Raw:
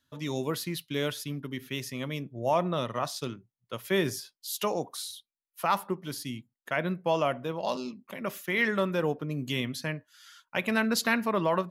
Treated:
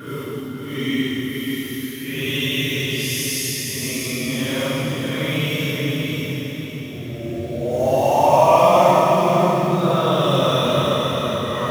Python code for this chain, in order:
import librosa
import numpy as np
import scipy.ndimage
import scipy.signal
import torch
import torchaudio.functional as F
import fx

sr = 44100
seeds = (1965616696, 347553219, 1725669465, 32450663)

p1 = fx.high_shelf(x, sr, hz=3900.0, db=6.0)
p2 = fx.quant_companded(p1, sr, bits=4)
p3 = p1 + F.gain(torch.from_numpy(p2), -9.5).numpy()
p4 = fx.paulstretch(p3, sr, seeds[0], factor=7.6, window_s=0.05, from_s=1.43)
p5 = p4 + fx.echo_diffused(p4, sr, ms=544, feedback_pct=44, wet_db=-3.5, dry=0)
p6 = fx.rev_gated(p5, sr, seeds[1], gate_ms=310, shape='flat', drr_db=0.0)
y = F.gain(torch.from_numpy(p6), 4.0).numpy()